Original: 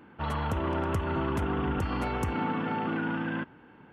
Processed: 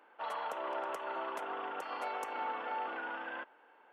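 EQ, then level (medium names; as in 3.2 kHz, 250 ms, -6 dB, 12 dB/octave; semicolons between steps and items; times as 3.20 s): ladder high-pass 480 Hz, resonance 35%; +1.0 dB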